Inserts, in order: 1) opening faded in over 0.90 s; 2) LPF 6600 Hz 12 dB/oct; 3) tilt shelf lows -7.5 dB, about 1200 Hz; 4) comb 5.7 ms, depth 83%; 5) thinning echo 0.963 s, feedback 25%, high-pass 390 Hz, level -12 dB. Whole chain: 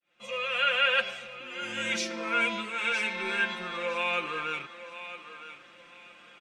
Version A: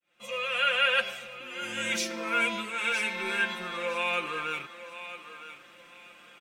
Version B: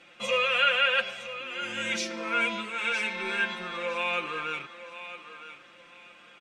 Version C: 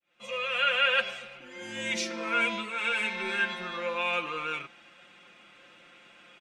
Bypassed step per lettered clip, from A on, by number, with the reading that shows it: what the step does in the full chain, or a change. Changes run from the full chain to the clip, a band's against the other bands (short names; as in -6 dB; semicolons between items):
2, 8 kHz band +3.5 dB; 1, momentary loudness spread change +2 LU; 5, momentary loudness spread change -3 LU